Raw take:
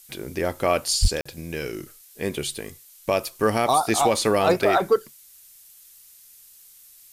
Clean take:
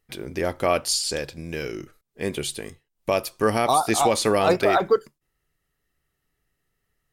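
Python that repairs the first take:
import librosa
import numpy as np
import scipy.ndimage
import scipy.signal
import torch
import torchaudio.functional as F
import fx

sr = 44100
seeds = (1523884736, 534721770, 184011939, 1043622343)

y = fx.fix_declip(x, sr, threshold_db=-10.0)
y = fx.highpass(y, sr, hz=140.0, slope=24, at=(1.01, 1.13), fade=0.02)
y = fx.fix_interpolate(y, sr, at_s=(1.21,), length_ms=45.0)
y = fx.noise_reduce(y, sr, print_start_s=5.8, print_end_s=6.3, reduce_db=26.0)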